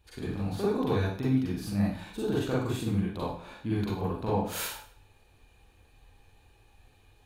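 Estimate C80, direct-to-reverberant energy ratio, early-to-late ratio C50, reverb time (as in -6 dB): 5.5 dB, -7.5 dB, -1.0 dB, 0.50 s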